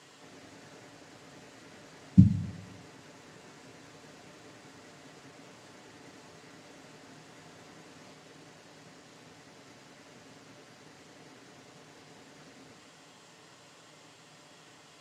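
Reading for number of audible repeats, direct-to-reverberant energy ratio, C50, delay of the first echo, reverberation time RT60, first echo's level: no echo audible, 3.0 dB, 12.5 dB, no echo audible, 0.60 s, no echo audible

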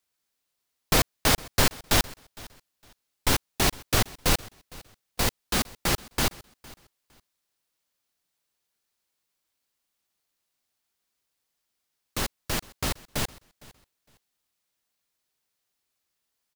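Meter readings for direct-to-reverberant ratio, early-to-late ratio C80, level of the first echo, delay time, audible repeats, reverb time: no reverb audible, no reverb audible, −22.0 dB, 459 ms, 1, no reverb audible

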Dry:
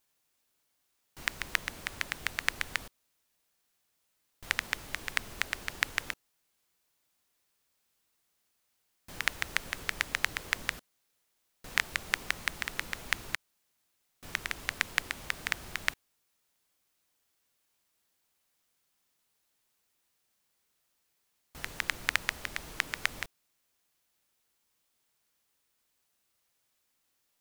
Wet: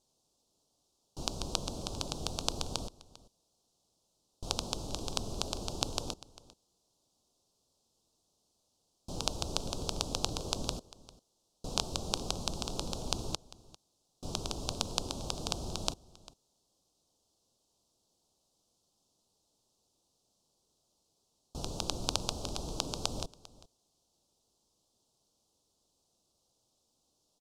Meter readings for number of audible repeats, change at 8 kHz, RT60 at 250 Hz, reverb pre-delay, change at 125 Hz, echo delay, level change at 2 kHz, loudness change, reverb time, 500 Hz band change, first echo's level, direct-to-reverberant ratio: 1, +3.5 dB, no reverb audible, no reverb audible, +9.0 dB, 398 ms, −19.0 dB, −3.0 dB, no reverb audible, +8.5 dB, −20.0 dB, no reverb audible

